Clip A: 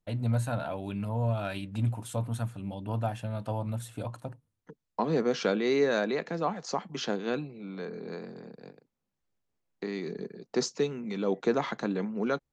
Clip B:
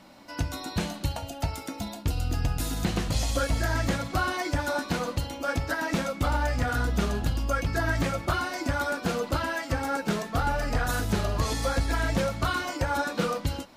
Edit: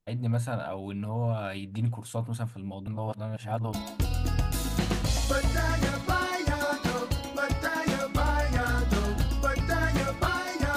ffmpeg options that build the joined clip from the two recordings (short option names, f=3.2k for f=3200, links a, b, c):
-filter_complex "[0:a]apad=whole_dur=10.76,atrim=end=10.76,asplit=2[a][b];[a]atrim=end=2.872[c];[b]atrim=start=2.868:end=3.732,asetpts=PTS-STARTPTS,areverse[d];[1:a]atrim=start=1.788:end=8.82[e];[c][d]acrossfade=d=0.004:c1=hsin:c2=hsin[f];[f][e]acrossfade=d=0.004:c1=hsin:c2=hsin"